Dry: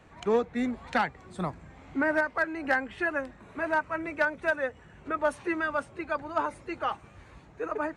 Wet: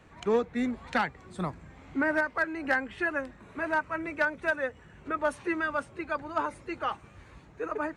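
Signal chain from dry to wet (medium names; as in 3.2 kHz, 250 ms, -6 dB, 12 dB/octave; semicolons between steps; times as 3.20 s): peaking EQ 720 Hz -3 dB 0.68 oct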